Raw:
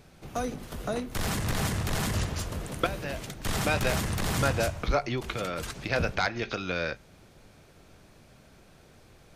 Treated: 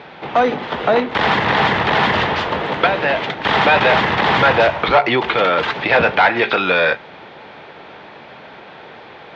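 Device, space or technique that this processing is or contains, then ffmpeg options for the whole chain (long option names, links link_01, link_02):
overdrive pedal into a guitar cabinet: -filter_complex "[0:a]asplit=2[link_01][link_02];[link_02]highpass=frequency=720:poles=1,volume=22dB,asoftclip=type=tanh:threshold=-10.5dB[link_03];[link_01][link_03]amix=inputs=2:normalize=0,lowpass=frequency=2600:poles=1,volume=-6dB,highpass=86,equalizer=frequency=100:width_type=q:width=4:gain=-4,equalizer=frequency=450:width_type=q:width=4:gain=3,equalizer=frequency=880:width_type=q:width=4:gain=8,equalizer=frequency=1900:width_type=q:width=4:gain=4,equalizer=frequency=3400:width_type=q:width=4:gain=4,lowpass=frequency=3800:width=0.5412,lowpass=frequency=3800:width=1.3066,volume=6dB"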